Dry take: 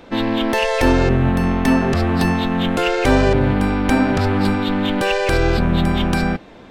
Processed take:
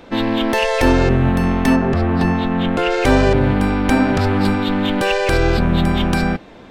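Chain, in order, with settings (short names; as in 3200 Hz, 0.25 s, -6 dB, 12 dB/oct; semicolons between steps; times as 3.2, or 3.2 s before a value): 1.75–2.9 LPF 1500 Hz -> 3100 Hz 6 dB/oct; gain +1 dB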